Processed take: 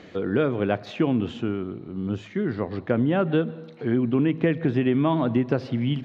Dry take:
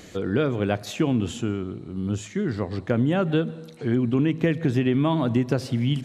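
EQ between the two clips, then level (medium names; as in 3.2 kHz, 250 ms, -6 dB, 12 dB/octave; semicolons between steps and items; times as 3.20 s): high-pass 190 Hz 6 dB/octave; distance through air 270 m; +2.5 dB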